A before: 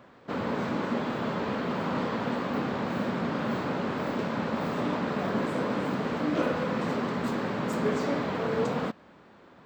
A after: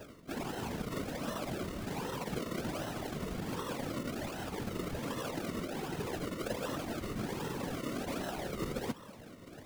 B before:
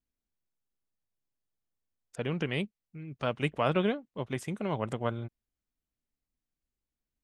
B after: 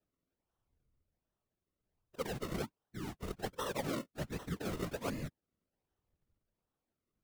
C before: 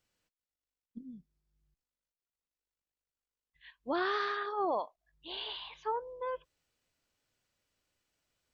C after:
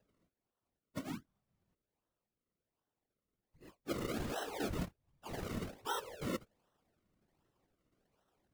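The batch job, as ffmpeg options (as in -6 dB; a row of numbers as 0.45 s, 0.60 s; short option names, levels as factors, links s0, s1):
-af "afftfilt=real='re*pow(10,22/40*sin(2*PI*(0.89*log(max(b,1)*sr/1024/100)/log(2)-(0.75)*(pts-256)/sr)))':imag='im*pow(10,22/40*sin(2*PI*(0.89*log(max(b,1)*sr/1024/100)/log(2)-(0.75)*(pts-256)/sr)))':win_size=1024:overlap=0.75,areverse,acompressor=threshold=0.0158:ratio=4,areverse,acrusher=samples=37:mix=1:aa=0.000001:lfo=1:lforange=37:lforate=1.3,afftfilt=real='hypot(re,im)*cos(2*PI*random(0))':imag='hypot(re,im)*sin(2*PI*random(1))':win_size=512:overlap=0.75,volume=1.68"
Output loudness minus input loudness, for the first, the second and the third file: -8.5 LU, -8.0 LU, -6.0 LU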